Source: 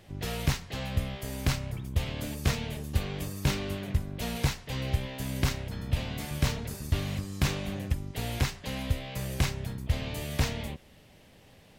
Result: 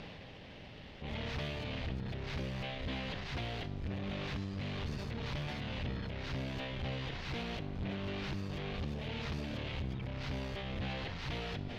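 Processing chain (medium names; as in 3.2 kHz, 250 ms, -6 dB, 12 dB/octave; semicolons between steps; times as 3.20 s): reverse the whole clip; peaking EQ 4.2 kHz +7 dB 2.1 oct; upward compressor, threshold -39 dBFS; valve stage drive 36 dB, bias 0.55; distance through air 260 m; Schroeder reverb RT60 1.1 s, combs from 25 ms, DRR 13.5 dB; decay stretcher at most 22 dB/s; trim +1 dB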